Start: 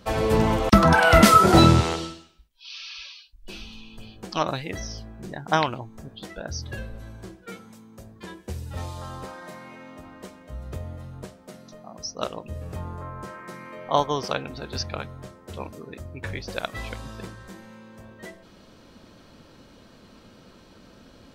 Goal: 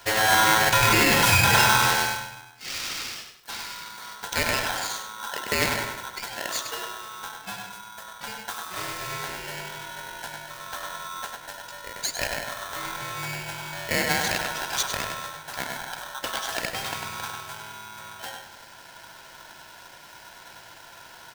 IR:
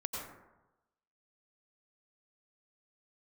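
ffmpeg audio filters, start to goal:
-filter_complex "[0:a]acrusher=bits=5:mode=log:mix=0:aa=0.000001,highpass=frequency=120:width=0.5412,highpass=frequency=120:width=1.3066,highshelf=frequency=8800:gain=9,alimiter=limit=-11dB:level=0:latency=1:release=87,equalizer=frequency=3700:width=2.9:gain=5.5,asplit=2[link_01][link_02];[1:a]atrim=start_sample=2205[link_03];[link_02][link_03]afir=irnorm=-1:irlink=0,volume=-8dB[link_04];[link_01][link_04]amix=inputs=2:normalize=0,asoftclip=type=tanh:threshold=-13.5dB,asplit=2[link_05][link_06];[link_06]adelay=100,lowpass=frequency=3600:poles=1,volume=-5dB,asplit=2[link_07][link_08];[link_08]adelay=100,lowpass=frequency=3600:poles=1,volume=0.34,asplit=2[link_09][link_10];[link_10]adelay=100,lowpass=frequency=3600:poles=1,volume=0.34,asplit=2[link_11][link_12];[link_12]adelay=100,lowpass=frequency=3600:poles=1,volume=0.34[link_13];[link_05][link_07][link_09][link_11][link_13]amix=inputs=5:normalize=0,aeval=exprs='val(0)*sgn(sin(2*PI*1200*n/s))':channel_layout=same"

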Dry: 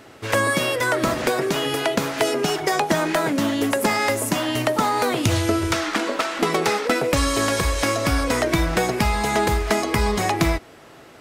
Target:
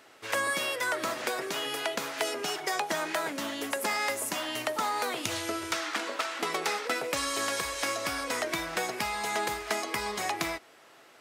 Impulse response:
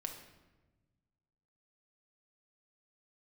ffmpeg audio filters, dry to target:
-af "highpass=frequency=820:poles=1,volume=-6.5dB"

